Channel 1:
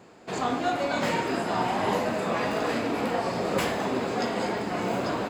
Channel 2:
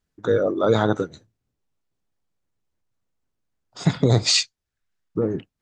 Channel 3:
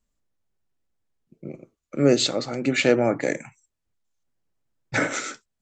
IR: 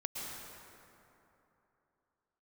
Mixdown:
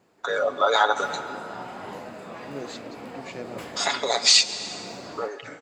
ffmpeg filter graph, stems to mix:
-filter_complex "[0:a]volume=-12dB[link_01];[1:a]highpass=frequency=680:width=0.5412,highpass=frequency=680:width=1.3066,aecho=1:1:7.1:0.57,dynaudnorm=framelen=290:gausssize=5:maxgain=9.5dB,volume=3dB,asplit=2[link_02][link_03];[link_03]volume=-13.5dB[link_04];[2:a]adelay=500,volume=-19dB[link_05];[3:a]atrim=start_sample=2205[link_06];[link_04][link_06]afir=irnorm=-1:irlink=0[link_07];[link_01][link_02][link_05][link_07]amix=inputs=4:normalize=0,acompressor=threshold=-23dB:ratio=1.5"

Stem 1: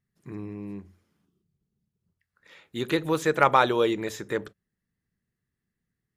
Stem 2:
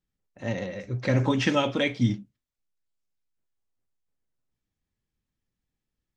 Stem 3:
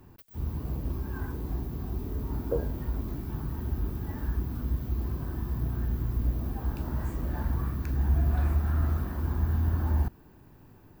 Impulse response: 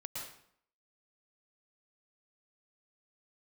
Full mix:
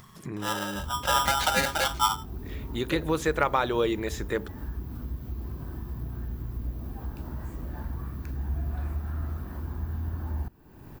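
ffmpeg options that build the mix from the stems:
-filter_complex "[0:a]acompressor=threshold=-21dB:ratio=3,volume=0dB[link_01];[1:a]aeval=exprs='val(0)*sgn(sin(2*PI*1100*n/s))':channel_layout=same,volume=-1.5dB[link_02];[2:a]adelay=400,volume=-6dB[link_03];[link_01][link_02][link_03]amix=inputs=3:normalize=0,acompressor=mode=upward:threshold=-30dB:ratio=2.5"

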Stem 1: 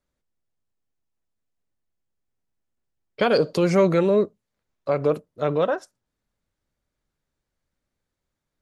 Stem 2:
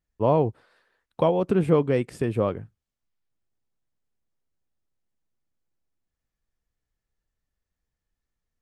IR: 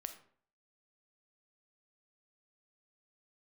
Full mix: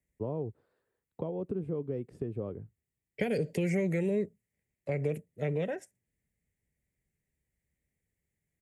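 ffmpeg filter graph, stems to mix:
-filter_complex "[0:a]firequalizer=gain_entry='entry(170,0);entry(290,-9);entry(820,-13);entry(1200,-30);entry(1900,3);entry(4000,-20);entry(7700,0)':delay=0.05:min_phase=1,volume=1dB[link_01];[1:a]tiltshelf=frequency=760:gain=9,acompressor=threshold=-21dB:ratio=3,volume=-13.5dB[link_02];[link_01][link_02]amix=inputs=2:normalize=0,highpass=50,equalizer=frequency=420:width_type=o:width=0.49:gain=5.5,acrossover=split=270|1700|5300[link_03][link_04][link_05][link_06];[link_03]acompressor=threshold=-33dB:ratio=4[link_07];[link_04]acompressor=threshold=-32dB:ratio=4[link_08];[link_05]acompressor=threshold=-44dB:ratio=4[link_09];[link_06]acompressor=threshold=-53dB:ratio=4[link_10];[link_07][link_08][link_09][link_10]amix=inputs=4:normalize=0"

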